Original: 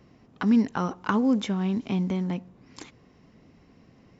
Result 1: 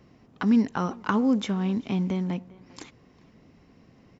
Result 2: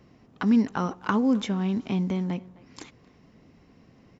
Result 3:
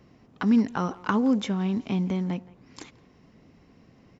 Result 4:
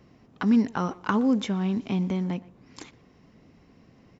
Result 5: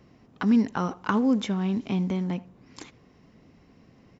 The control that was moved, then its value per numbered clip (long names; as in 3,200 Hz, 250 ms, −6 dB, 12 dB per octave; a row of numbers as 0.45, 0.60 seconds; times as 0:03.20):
far-end echo of a speakerphone, delay time: 400, 260, 170, 120, 80 milliseconds